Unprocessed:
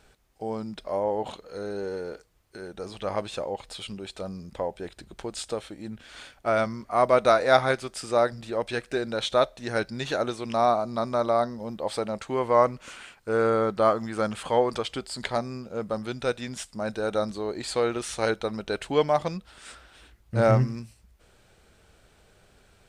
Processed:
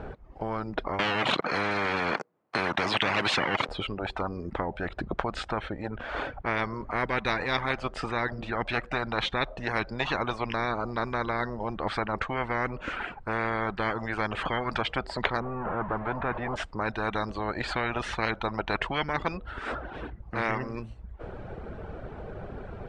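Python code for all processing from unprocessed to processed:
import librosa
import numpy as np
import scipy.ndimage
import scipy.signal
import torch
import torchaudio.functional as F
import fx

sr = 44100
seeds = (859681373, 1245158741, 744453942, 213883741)

y = fx.chain(x, sr, fx.leveller(passes=5),
    fx.highpass(hz=180.0, slope=24), at=(0.99, 3.69))
y = fx.chain(y, sr, fx.zero_step(step_db=-32.0),
    fx.lowpass(hz=1200.0, slope=12), at=(15.4, 16.56))
y = scipy.signal.sosfilt(scipy.signal.butter(2, 1000.0, 'lowpass', fs=sr, output='sos'), y)
y = fx.dereverb_blind(y, sr, rt60_s=0.62)
y = fx.spectral_comp(y, sr, ratio=10.0)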